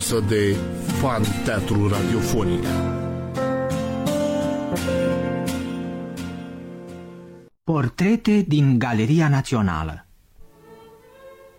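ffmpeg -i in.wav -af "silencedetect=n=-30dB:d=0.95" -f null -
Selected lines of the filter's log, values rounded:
silence_start: 9.96
silence_end: 11.59 | silence_duration: 1.62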